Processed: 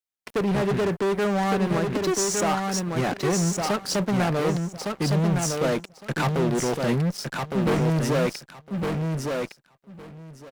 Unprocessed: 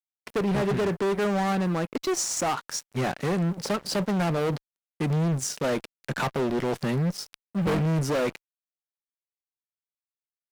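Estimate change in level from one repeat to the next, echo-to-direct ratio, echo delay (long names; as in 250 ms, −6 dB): −16.0 dB, −4.0 dB, 1,160 ms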